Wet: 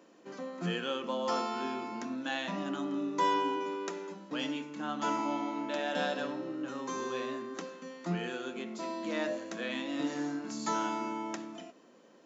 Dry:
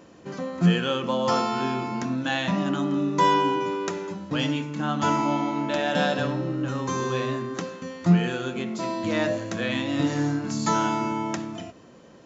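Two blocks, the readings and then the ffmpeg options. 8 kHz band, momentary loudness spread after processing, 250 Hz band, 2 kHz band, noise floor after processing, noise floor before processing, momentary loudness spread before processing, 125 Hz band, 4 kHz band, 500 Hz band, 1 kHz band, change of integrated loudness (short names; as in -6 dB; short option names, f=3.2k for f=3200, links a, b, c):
n/a, 8 LU, -10.5 dB, -8.5 dB, -59 dBFS, -50 dBFS, 9 LU, -18.5 dB, -8.5 dB, -8.5 dB, -8.5 dB, -9.5 dB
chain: -af "highpass=f=220:w=0.5412,highpass=f=220:w=1.3066,volume=-8.5dB"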